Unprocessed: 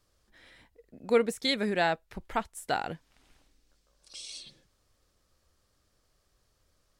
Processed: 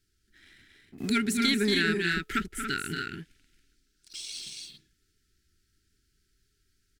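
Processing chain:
brick-wall band-stop 440–1,300 Hz
leveller curve on the samples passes 1
on a send: loudspeakers that aren't time-aligned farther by 79 metres −6 dB, 95 metres −5 dB
0:00.98–0:02.39: on the sum: multiband upward and downward compressor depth 70%

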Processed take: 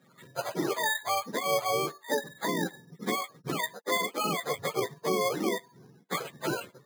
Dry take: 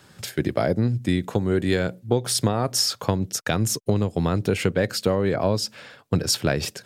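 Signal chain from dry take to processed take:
frequency axis turned over on the octave scale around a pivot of 460 Hz
elliptic band-pass filter 180–9,200 Hz, stop band 40 dB
decimation without filtering 8×
level −4 dB

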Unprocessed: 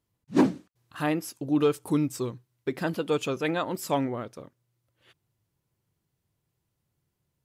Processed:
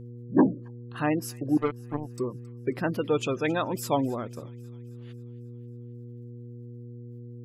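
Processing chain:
gate on every frequency bin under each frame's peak −25 dB strong
0:01.57–0:02.18: power curve on the samples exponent 3
on a send: delay with a high-pass on its return 270 ms, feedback 55%, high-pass 1,800 Hz, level −19 dB
on the sum: hum with harmonics 120 Hz, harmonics 4, −43 dBFS −7 dB per octave
level +1 dB

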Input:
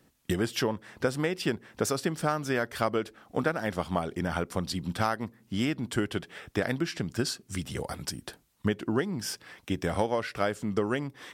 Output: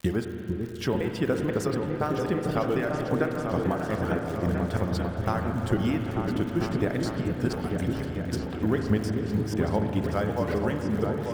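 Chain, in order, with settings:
slices reordered back to front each 251 ms, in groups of 2
spectral tilt −2 dB per octave
surface crackle 110 per second −32 dBFS
in parallel at −4.5 dB: bit reduction 7 bits
on the sum: reverb reduction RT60 1.7 s
echo whose low-pass opens from repeat to repeat 446 ms, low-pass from 400 Hz, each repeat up 2 octaves, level −3 dB
spring reverb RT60 3.8 s, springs 37/59 ms, chirp 55 ms, DRR 4 dB
level −5.5 dB

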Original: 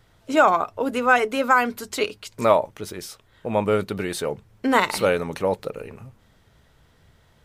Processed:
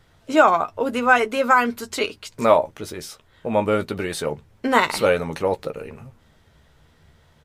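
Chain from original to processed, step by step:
high-shelf EQ 12,000 Hz −5 dB
double-tracking delay 13 ms −8 dB
level +1 dB

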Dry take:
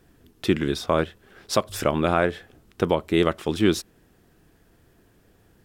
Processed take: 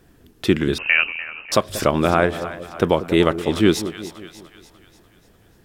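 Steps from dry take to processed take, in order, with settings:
echo with a time of its own for lows and highs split 690 Hz, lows 186 ms, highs 295 ms, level −12.5 dB
0:00.78–0:01.52: voice inversion scrambler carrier 2,900 Hz
level +4 dB

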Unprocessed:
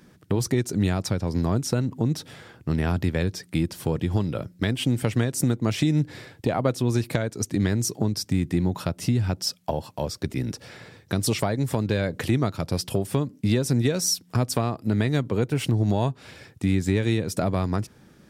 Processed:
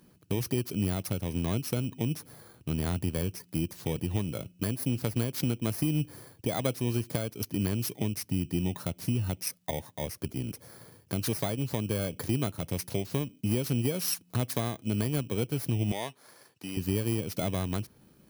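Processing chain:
samples in bit-reversed order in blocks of 16 samples
0:15.92–0:16.77: meter weighting curve A
level −6.5 dB

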